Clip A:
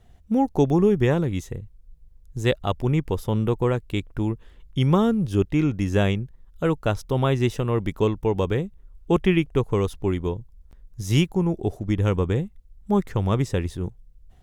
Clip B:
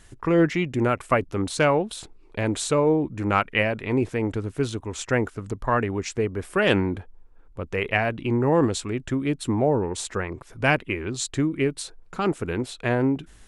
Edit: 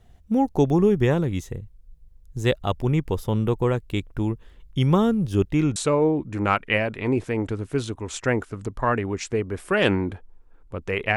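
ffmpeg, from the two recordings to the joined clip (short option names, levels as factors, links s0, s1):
-filter_complex "[0:a]apad=whole_dur=11.16,atrim=end=11.16,atrim=end=5.762[s0];[1:a]atrim=start=2.608:end=8.01[s1];[s0][s1]acrossfade=d=0.004:c1=hsin:c2=hsin"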